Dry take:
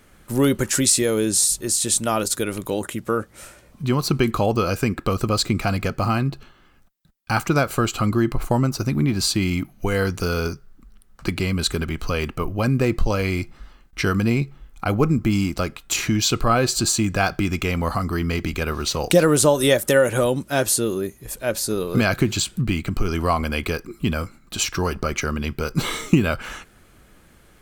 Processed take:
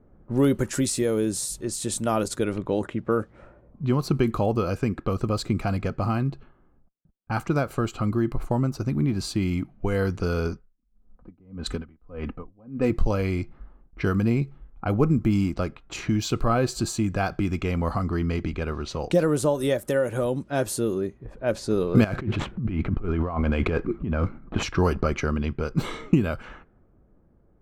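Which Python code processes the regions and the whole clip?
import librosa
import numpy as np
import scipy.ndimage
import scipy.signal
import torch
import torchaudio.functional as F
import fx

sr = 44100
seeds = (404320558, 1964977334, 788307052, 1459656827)

y = fx.chain(x, sr, fx.comb(ms=4.0, depth=0.48),
    fx.tremolo_db(hz=1.7, depth_db=30), at=(10.52, 12.9))
y = fx.chain(y, sr, fx.median_filter(points=9),
    fx.over_compress(threshold_db=-28.0, ratio=-1.0), at=(22.04, 24.63))
y = fx.env_lowpass(y, sr, base_hz=710.0, full_db=-17.5)
y = fx.tilt_shelf(y, sr, db=5.0, hz=1500.0)
y = fx.rider(y, sr, range_db=10, speed_s=2.0)
y = y * 10.0 ** (-7.5 / 20.0)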